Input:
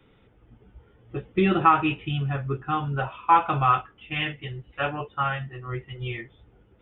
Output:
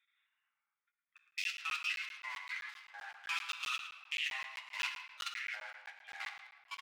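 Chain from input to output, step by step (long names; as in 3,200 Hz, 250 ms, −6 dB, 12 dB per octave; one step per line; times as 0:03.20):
adaptive Wiener filter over 15 samples
inverse Chebyshev high-pass filter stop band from 550 Hz, stop band 70 dB
output level in coarse steps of 22 dB
flanger 1.9 Hz, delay 7.3 ms, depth 3.8 ms, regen −38%
delay with pitch and tempo change per echo 159 ms, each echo −4 semitones, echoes 2, each echo −6 dB
slap from a distant wall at 19 metres, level −12 dB
convolution reverb RT60 1.5 s, pre-delay 4 ms, DRR 6 dB
regular buffer underruns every 0.13 s, samples 512, zero, from 0:00.92
level +11 dB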